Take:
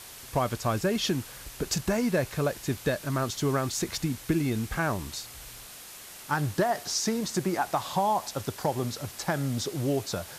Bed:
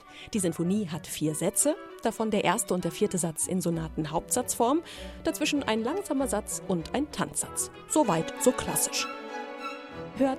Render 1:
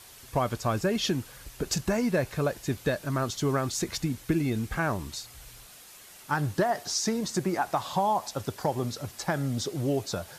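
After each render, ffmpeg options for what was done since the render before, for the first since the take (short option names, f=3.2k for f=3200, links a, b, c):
-af "afftdn=nr=6:nf=-46"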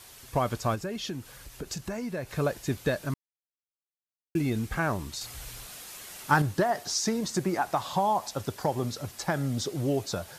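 -filter_complex "[0:a]asplit=3[a][b][c];[a]afade=t=out:st=0.74:d=0.02[d];[b]acompressor=threshold=-44dB:ratio=1.5:attack=3.2:release=140:knee=1:detection=peak,afade=t=in:st=0.74:d=0.02,afade=t=out:st=2.29:d=0.02[e];[c]afade=t=in:st=2.29:d=0.02[f];[d][e][f]amix=inputs=3:normalize=0,asettb=1/sr,asplit=3[g][h][i];[g]atrim=end=5.214[j];[h]atrim=start=5.21:end=6.42,asetpts=PTS-STARTPTS,afade=t=in:d=0.004:c=qsin,afade=t=out:st=1.206:d=0.004:c=qsin,acontrast=50[k];[i]atrim=start=6.416[l];[j][k]acrossfade=d=0.004:c1=hsin:c2=qsin[m];[m][l]acrossfade=d=0.004:c1=qsin:c2=hsin,asplit=3[n][o][p];[n]atrim=end=3.14,asetpts=PTS-STARTPTS,afade=t=out:st=3.136:d=0.004:c=hsin[q];[o]atrim=start=3.14:end=4.35,asetpts=PTS-STARTPTS,volume=0[r];[p]atrim=start=4.35,asetpts=PTS-STARTPTS,afade=t=in:d=0.004:c=hsin[s];[q][r][s]concat=n=3:v=0:a=1"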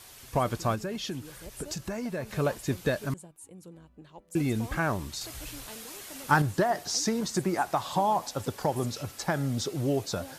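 -filter_complex "[1:a]volume=-20dB[a];[0:a][a]amix=inputs=2:normalize=0"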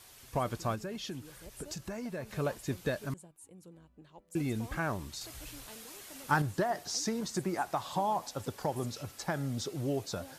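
-af "volume=-5.5dB"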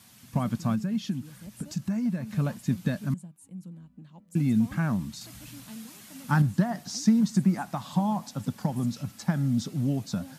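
-af "highpass=140,lowshelf=f=290:t=q:w=3:g=10"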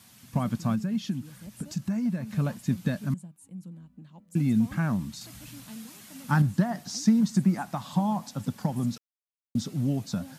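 -filter_complex "[0:a]asplit=3[a][b][c];[a]atrim=end=8.98,asetpts=PTS-STARTPTS,afade=t=out:st=8.976:d=0.004:c=hsin[d];[b]atrim=start=8.98:end=9.55,asetpts=PTS-STARTPTS,volume=0[e];[c]atrim=start=9.55,asetpts=PTS-STARTPTS,afade=t=in:d=0.004:c=hsin[f];[d][e][f]concat=n=3:v=0:a=1"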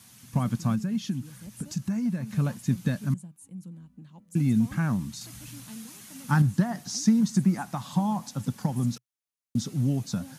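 -af "equalizer=f=125:t=o:w=0.33:g=4,equalizer=f=630:t=o:w=0.33:g=-4,equalizer=f=6.3k:t=o:w=0.33:g=4,equalizer=f=10k:t=o:w=0.33:g=5"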